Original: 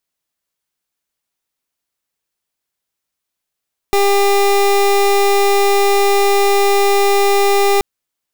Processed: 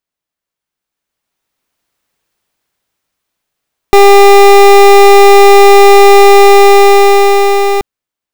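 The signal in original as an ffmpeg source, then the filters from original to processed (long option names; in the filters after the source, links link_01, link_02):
-f lavfi -i "aevalsrc='0.251*(2*lt(mod(400*t,1),0.26)-1)':duration=3.88:sample_rate=44100"
-af "equalizer=frequency=16000:width_type=o:width=2:gain=-7.5,dynaudnorm=framelen=230:gausssize=13:maxgain=16.5dB"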